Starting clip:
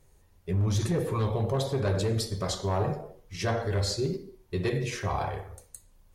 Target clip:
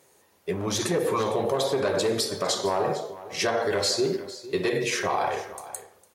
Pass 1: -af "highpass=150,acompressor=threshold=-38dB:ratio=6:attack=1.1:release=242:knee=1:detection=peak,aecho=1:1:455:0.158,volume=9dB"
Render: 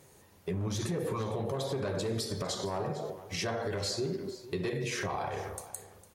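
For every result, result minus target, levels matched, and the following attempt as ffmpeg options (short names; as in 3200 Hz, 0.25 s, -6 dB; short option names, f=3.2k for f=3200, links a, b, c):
125 Hz band +9.5 dB; compressor: peak gain reduction +9 dB
-af "highpass=330,acompressor=threshold=-38dB:ratio=6:attack=1.1:release=242:knee=1:detection=peak,aecho=1:1:455:0.158,volume=9dB"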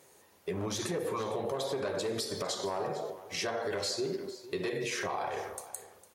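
compressor: peak gain reduction +9 dB
-af "highpass=330,acompressor=threshold=-27dB:ratio=6:attack=1.1:release=242:knee=1:detection=peak,aecho=1:1:455:0.158,volume=9dB"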